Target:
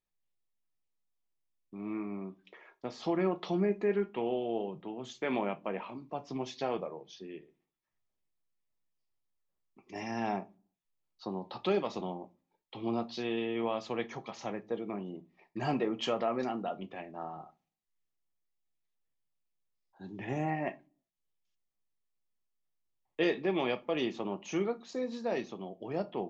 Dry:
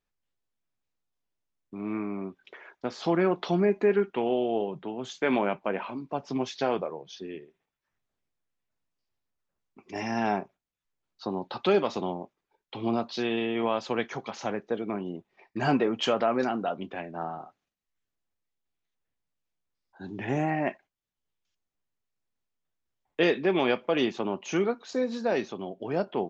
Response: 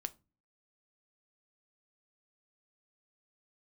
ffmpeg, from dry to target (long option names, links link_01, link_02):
-filter_complex "[0:a]bandreject=frequency=1500:width=7[link_01];[1:a]atrim=start_sample=2205[link_02];[link_01][link_02]afir=irnorm=-1:irlink=0,volume=-4.5dB"